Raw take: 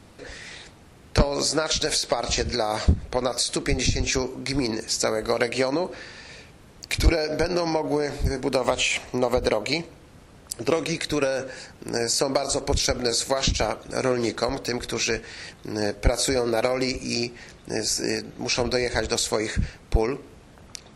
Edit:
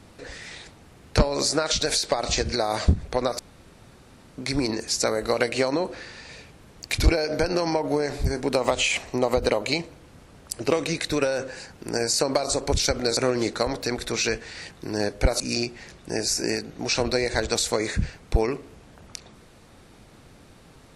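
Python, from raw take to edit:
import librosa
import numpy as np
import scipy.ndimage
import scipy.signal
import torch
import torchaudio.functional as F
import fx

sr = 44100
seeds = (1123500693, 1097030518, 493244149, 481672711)

y = fx.edit(x, sr, fx.room_tone_fill(start_s=3.39, length_s=0.99),
    fx.cut(start_s=13.17, length_s=0.82),
    fx.cut(start_s=16.22, length_s=0.78), tone=tone)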